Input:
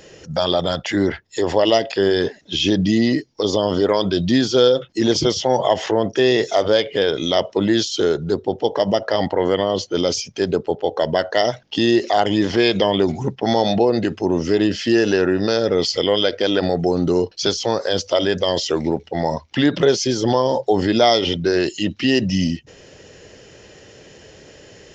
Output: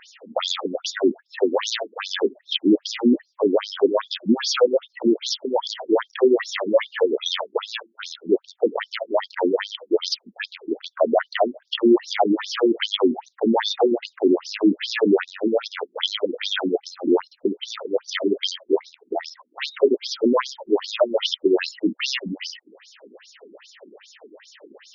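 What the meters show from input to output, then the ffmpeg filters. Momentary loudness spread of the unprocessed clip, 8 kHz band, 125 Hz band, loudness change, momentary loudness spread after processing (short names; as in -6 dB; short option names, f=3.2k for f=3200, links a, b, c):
5 LU, n/a, under -15 dB, -4.0 dB, 10 LU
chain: -af "aeval=exprs='0.299*(abs(mod(val(0)/0.299+3,4)-2)-1)':c=same,afftfilt=real='re*between(b*sr/1024,260*pow(5100/260,0.5+0.5*sin(2*PI*2.5*pts/sr))/1.41,260*pow(5100/260,0.5+0.5*sin(2*PI*2.5*pts/sr))*1.41)':imag='im*between(b*sr/1024,260*pow(5100/260,0.5+0.5*sin(2*PI*2.5*pts/sr))/1.41,260*pow(5100/260,0.5+0.5*sin(2*PI*2.5*pts/sr))*1.41)':win_size=1024:overlap=0.75,volume=4.5dB"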